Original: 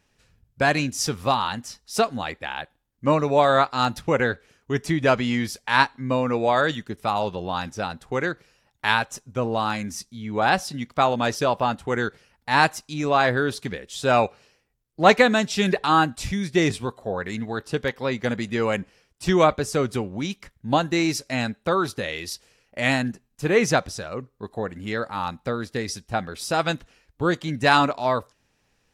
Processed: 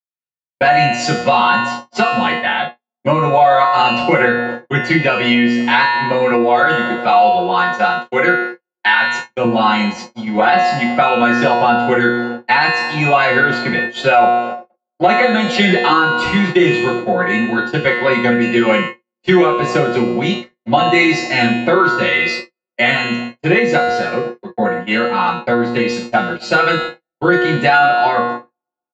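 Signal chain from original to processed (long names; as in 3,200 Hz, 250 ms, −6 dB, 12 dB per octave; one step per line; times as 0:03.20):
spectral magnitudes quantised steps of 15 dB
parametric band 110 Hz −11 dB 0.39 octaves
tuned comb filter 120 Hz, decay 0.82 s, harmonics all, mix 90%
delay with a band-pass on its return 126 ms, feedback 82%, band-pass 440 Hz, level −19 dB
noise gate −48 dBFS, range −55 dB
0:06.88–0:09.44: low-shelf EQ 330 Hz −7 dB
convolution reverb, pre-delay 3 ms, DRR −1.5 dB
downward compressor 6 to 1, threshold −24 dBFS, peak gain reduction 12.5 dB
comb filter 5.5 ms, depth 73%
downsampling to 16,000 Hz
boost into a limiter +15 dB
level −1 dB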